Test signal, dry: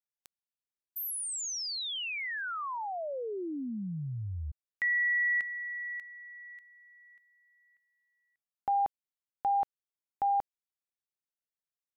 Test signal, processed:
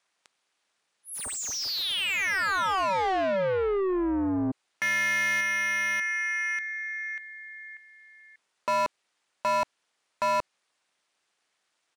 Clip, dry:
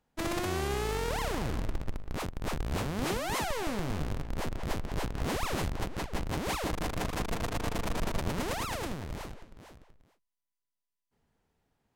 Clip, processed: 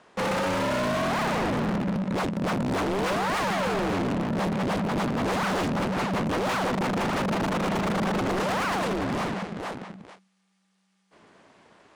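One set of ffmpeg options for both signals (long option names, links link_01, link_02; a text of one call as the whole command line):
ffmpeg -i in.wav -filter_complex "[0:a]aeval=exprs='val(0)*sin(2*PI*190*n/s)':channel_layout=same,aresample=22050,aresample=44100,asplit=2[link_01][link_02];[link_02]highpass=frequency=720:poles=1,volume=36dB,asoftclip=type=tanh:threshold=-19dB[link_03];[link_01][link_03]amix=inputs=2:normalize=0,lowpass=frequency=2800:poles=1,volume=-6dB" out.wav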